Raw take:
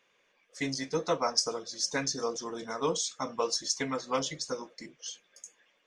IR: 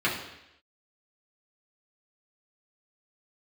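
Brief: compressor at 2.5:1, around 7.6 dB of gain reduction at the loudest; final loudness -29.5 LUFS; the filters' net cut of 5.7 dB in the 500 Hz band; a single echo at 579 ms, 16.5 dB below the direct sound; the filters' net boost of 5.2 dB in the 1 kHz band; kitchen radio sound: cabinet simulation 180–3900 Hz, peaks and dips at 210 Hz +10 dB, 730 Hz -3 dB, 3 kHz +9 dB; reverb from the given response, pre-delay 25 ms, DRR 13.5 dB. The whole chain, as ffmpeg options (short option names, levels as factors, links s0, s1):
-filter_complex "[0:a]equalizer=f=500:t=o:g=-8,equalizer=f=1000:t=o:g=8.5,acompressor=threshold=0.02:ratio=2.5,aecho=1:1:579:0.15,asplit=2[s0][s1];[1:a]atrim=start_sample=2205,adelay=25[s2];[s1][s2]afir=irnorm=-1:irlink=0,volume=0.0473[s3];[s0][s3]amix=inputs=2:normalize=0,highpass=180,equalizer=f=210:t=q:w=4:g=10,equalizer=f=730:t=q:w=4:g=-3,equalizer=f=3000:t=q:w=4:g=9,lowpass=f=3900:w=0.5412,lowpass=f=3900:w=1.3066,volume=2.82"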